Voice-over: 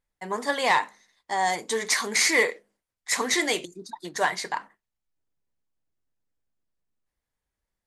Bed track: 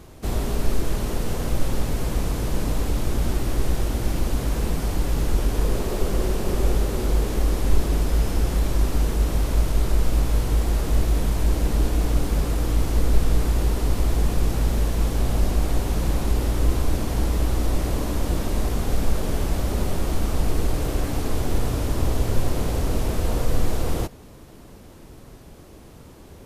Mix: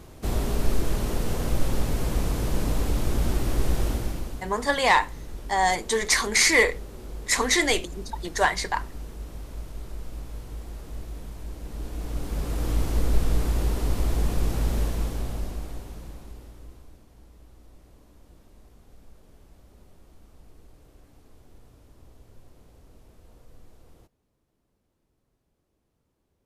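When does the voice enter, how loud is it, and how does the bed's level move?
4.20 s, +2.5 dB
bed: 3.9 s -1.5 dB
4.53 s -16.5 dB
11.59 s -16.5 dB
12.69 s -3.5 dB
14.83 s -3.5 dB
17.07 s -30 dB

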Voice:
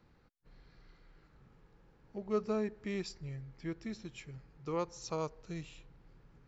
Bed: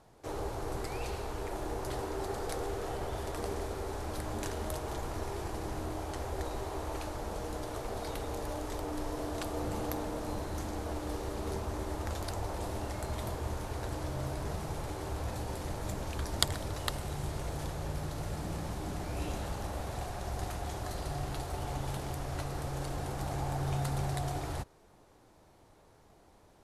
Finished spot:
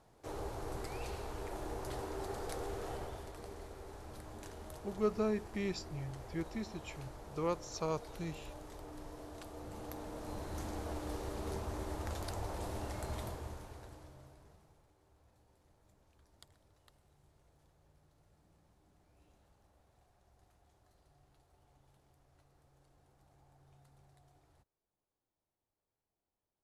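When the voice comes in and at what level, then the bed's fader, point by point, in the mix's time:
2.70 s, +0.5 dB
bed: 2.96 s -5 dB
3.35 s -12.5 dB
9.63 s -12.5 dB
10.64 s -4 dB
13.17 s -4 dB
14.92 s -32 dB

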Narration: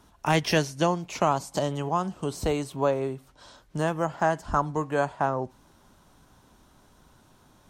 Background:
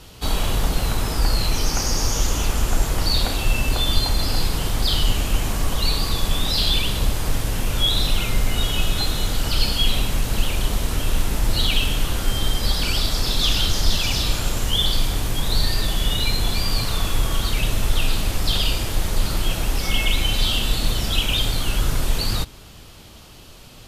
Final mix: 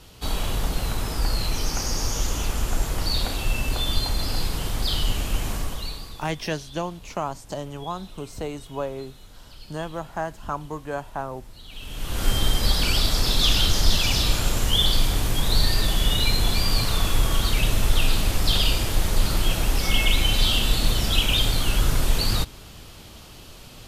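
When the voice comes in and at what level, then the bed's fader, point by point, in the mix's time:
5.95 s, -5.0 dB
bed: 5.55 s -4.5 dB
6.46 s -25 dB
11.64 s -25 dB
12.25 s 0 dB

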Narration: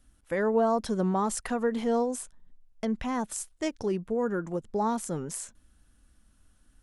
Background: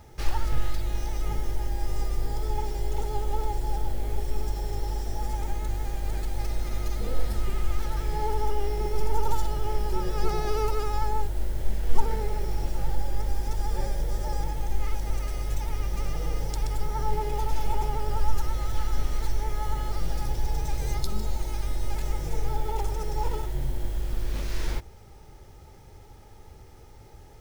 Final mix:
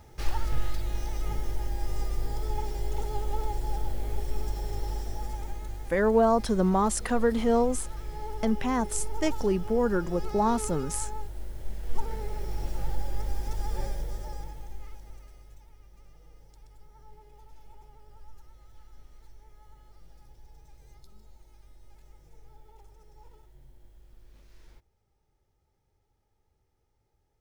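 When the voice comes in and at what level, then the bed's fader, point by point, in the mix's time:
5.60 s, +3.0 dB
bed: 4.94 s -2.5 dB
5.93 s -9.5 dB
11.57 s -9.5 dB
12.7 s -3.5 dB
13.86 s -3.5 dB
15.76 s -25.5 dB

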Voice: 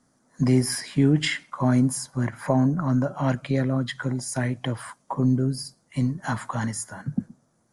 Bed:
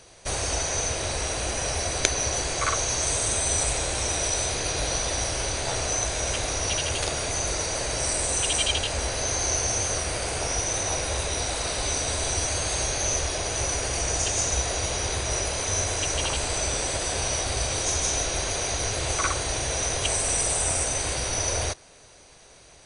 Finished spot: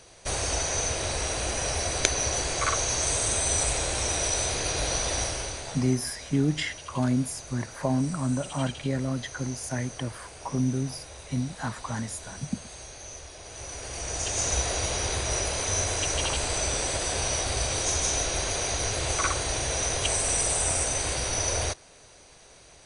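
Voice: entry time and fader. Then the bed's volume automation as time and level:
5.35 s, -5.0 dB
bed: 5.21 s -1 dB
6.07 s -16.5 dB
13.35 s -16.5 dB
14.51 s -1 dB

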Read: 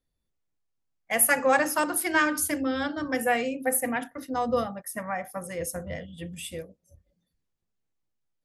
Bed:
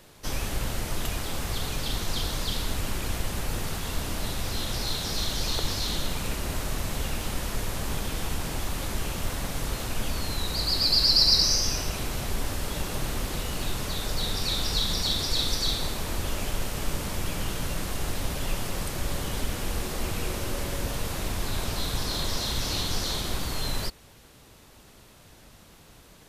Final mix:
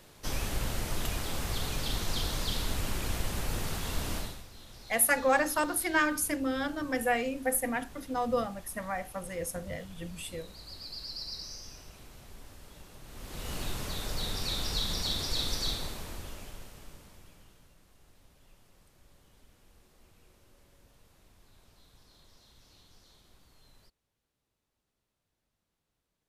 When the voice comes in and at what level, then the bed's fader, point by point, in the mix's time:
3.80 s, -3.5 dB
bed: 4.17 s -3 dB
4.48 s -20.5 dB
13.03 s -20.5 dB
13.51 s -5.5 dB
15.68 s -5.5 dB
17.77 s -31.5 dB

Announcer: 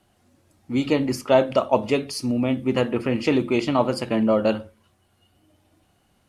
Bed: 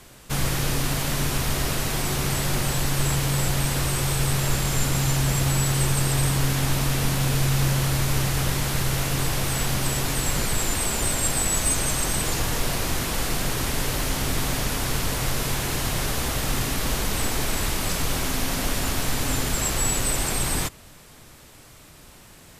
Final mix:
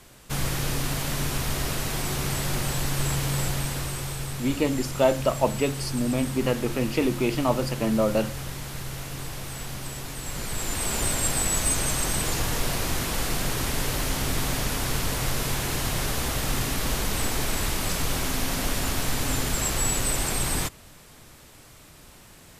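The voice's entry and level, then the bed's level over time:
3.70 s, -3.5 dB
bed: 3.41 s -3 dB
4.39 s -10.5 dB
10.18 s -10.5 dB
10.96 s -1.5 dB

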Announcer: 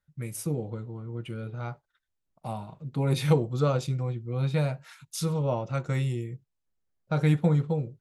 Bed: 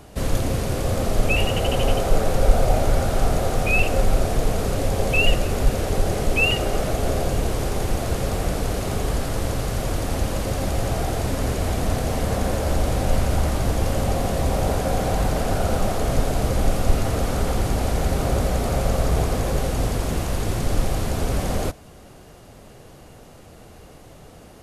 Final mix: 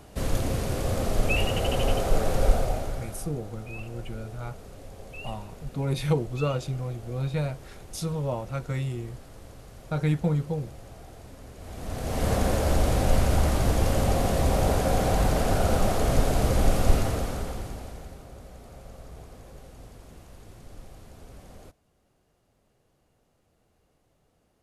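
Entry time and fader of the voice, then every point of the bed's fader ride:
2.80 s, -2.0 dB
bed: 2.49 s -4.5 dB
3.36 s -22 dB
11.53 s -22 dB
12.27 s -1.5 dB
16.94 s -1.5 dB
18.27 s -24 dB

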